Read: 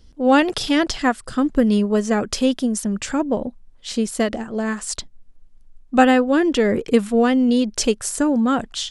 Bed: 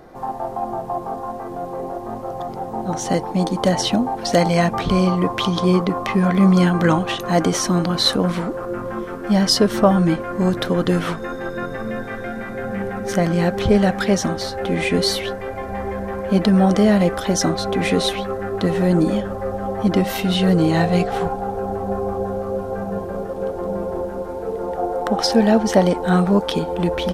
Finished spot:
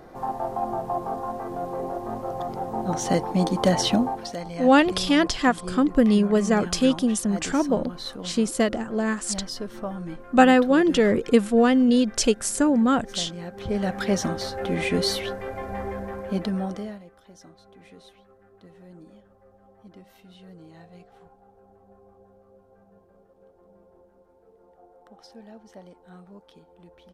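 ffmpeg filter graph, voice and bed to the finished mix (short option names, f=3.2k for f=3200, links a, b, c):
-filter_complex "[0:a]adelay=4400,volume=-1.5dB[a];[1:a]volume=10.5dB,afade=t=out:st=4.03:d=0.32:silence=0.16788,afade=t=in:st=13.53:d=0.65:silence=0.223872,afade=t=out:st=15.81:d=1.21:silence=0.0501187[b];[a][b]amix=inputs=2:normalize=0"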